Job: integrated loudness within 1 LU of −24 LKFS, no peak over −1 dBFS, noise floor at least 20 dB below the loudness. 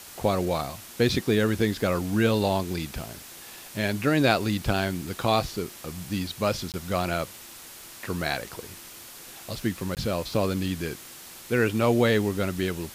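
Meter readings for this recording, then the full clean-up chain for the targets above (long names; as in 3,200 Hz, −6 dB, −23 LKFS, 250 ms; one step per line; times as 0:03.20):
number of dropouts 2; longest dropout 18 ms; background noise floor −45 dBFS; target noise floor −47 dBFS; integrated loudness −26.5 LKFS; sample peak −5.0 dBFS; target loudness −24.0 LKFS
→ repair the gap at 0:06.72/0:09.95, 18 ms
broadband denoise 6 dB, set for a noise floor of −45 dBFS
level +2.5 dB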